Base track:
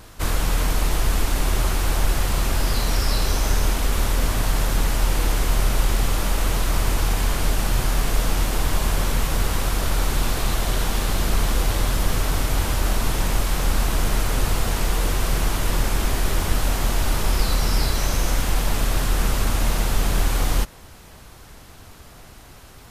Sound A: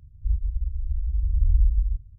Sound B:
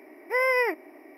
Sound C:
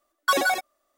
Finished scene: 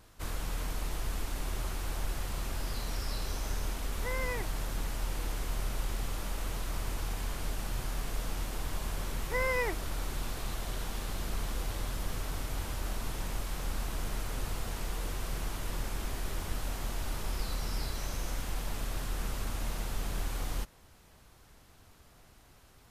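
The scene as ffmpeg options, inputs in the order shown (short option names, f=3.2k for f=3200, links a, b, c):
-filter_complex "[2:a]asplit=2[a][b];[0:a]volume=-14.5dB[c];[a]atrim=end=1.17,asetpts=PTS-STARTPTS,volume=-14dB,afade=t=in:d=0.004:c=hsin,afade=t=out:st=1.166:d=0.004:c=hsin,adelay=3720[d];[b]atrim=end=1.17,asetpts=PTS-STARTPTS,volume=-8dB,afade=t=in:d=0.004:c=hsin,afade=t=out:st=1.166:d=0.004:c=hsin,adelay=9000[e];[c][d][e]amix=inputs=3:normalize=0"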